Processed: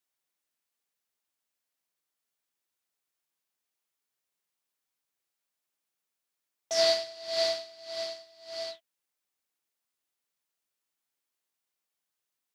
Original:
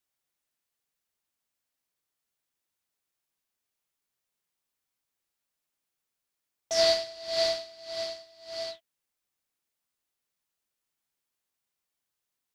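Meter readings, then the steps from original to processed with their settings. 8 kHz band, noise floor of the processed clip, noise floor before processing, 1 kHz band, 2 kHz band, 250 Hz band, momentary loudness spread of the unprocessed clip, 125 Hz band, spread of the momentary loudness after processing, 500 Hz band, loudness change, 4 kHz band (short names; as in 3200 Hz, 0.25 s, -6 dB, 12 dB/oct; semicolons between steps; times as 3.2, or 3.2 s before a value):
-1.0 dB, under -85 dBFS, under -85 dBFS, -1.5 dB, -1.0 dB, -2.5 dB, 17 LU, n/a, 17 LU, -1.5 dB, -1.0 dB, -1.0 dB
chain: low shelf 120 Hz -12 dB; gain -1 dB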